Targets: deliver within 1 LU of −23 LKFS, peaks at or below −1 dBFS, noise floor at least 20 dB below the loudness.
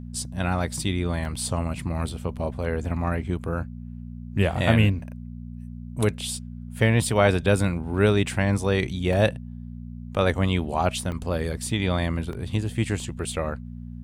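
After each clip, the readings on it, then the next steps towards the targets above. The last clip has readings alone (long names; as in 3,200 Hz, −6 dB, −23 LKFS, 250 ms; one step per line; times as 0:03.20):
number of dropouts 5; longest dropout 1.5 ms; mains hum 60 Hz; hum harmonics up to 240 Hz; level of the hum −34 dBFS; integrated loudness −25.0 LKFS; sample peak −6.0 dBFS; target loudness −23.0 LKFS
→ repair the gap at 0:01.25/0:09.13/0:11.12/0:12.33/0:13.00, 1.5 ms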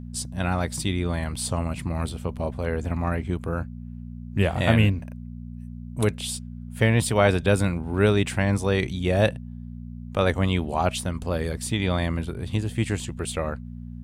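number of dropouts 0; mains hum 60 Hz; hum harmonics up to 240 Hz; level of the hum −34 dBFS
→ hum removal 60 Hz, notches 4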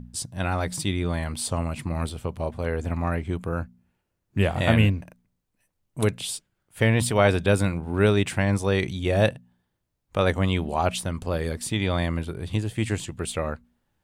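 mains hum none found; integrated loudness −25.5 LKFS; sample peak −6.0 dBFS; target loudness −23.0 LKFS
→ level +2.5 dB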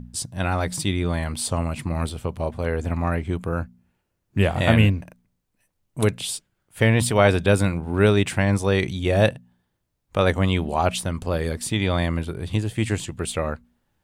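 integrated loudness −23.0 LKFS; sample peak −3.5 dBFS; background noise floor −75 dBFS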